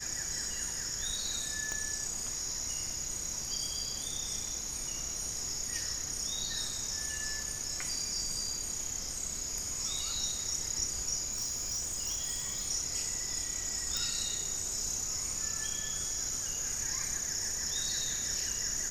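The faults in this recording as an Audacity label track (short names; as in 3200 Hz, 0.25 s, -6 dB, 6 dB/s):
1.720000	1.720000	pop -22 dBFS
11.310000	12.680000	clipped -31 dBFS
13.970000	13.970000	pop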